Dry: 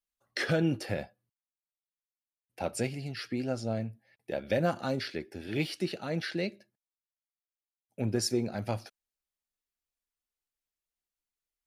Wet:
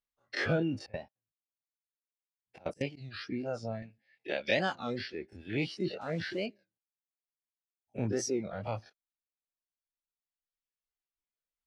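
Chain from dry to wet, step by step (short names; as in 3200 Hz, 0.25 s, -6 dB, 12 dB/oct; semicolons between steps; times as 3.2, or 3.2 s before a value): spectral dilation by 60 ms; reverb removal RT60 1.8 s; 0.84–2.98 step gate "x.x.xx.x" 192 bpm -24 dB; 3.82–4.77 weighting filter D; 6.01–6.47 requantised 8-bit, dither none; air absorption 120 m; record warp 33 1/3 rpm, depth 160 cents; gain -3.5 dB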